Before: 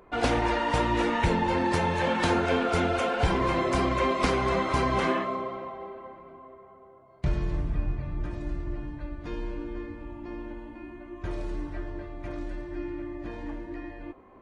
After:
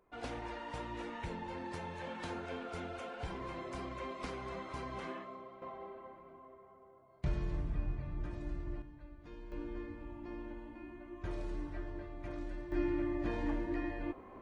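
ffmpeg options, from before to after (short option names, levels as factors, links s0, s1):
-af "asetnsamples=n=441:p=0,asendcmd='5.62 volume volume -8dB;8.82 volume volume -16dB;9.52 volume volume -7dB;12.72 volume volume 1dB',volume=0.133"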